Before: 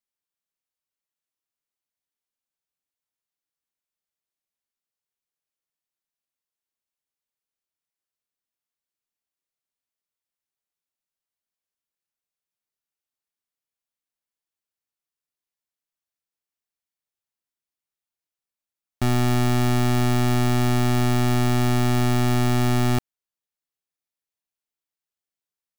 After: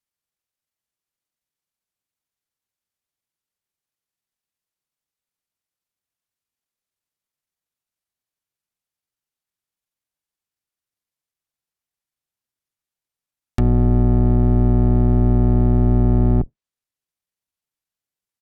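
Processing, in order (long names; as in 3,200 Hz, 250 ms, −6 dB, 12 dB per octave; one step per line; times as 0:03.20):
sub-octave generator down 1 octave, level +2 dB
treble cut that deepens with the level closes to 580 Hz, closed at −16 dBFS
tempo change 1.4×
level +2.5 dB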